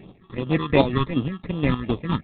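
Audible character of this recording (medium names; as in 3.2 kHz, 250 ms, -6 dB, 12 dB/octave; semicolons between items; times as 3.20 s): aliases and images of a low sample rate 1.5 kHz, jitter 0%; chopped level 4.3 Hz, depth 60%, duty 50%; phasing stages 6, 2.7 Hz, lowest notch 550–1900 Hz; G.726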